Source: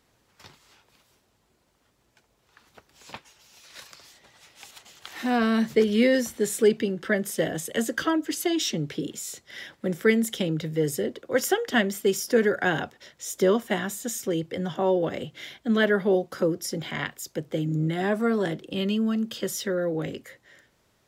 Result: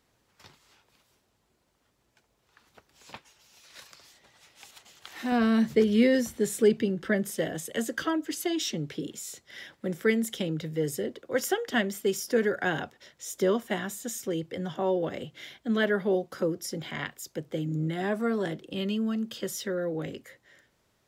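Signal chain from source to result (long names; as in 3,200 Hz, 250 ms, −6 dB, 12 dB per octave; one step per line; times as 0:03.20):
0:05.32–0:07.37: low-shelf EQ 230 Hz +8 dB
level −4 dB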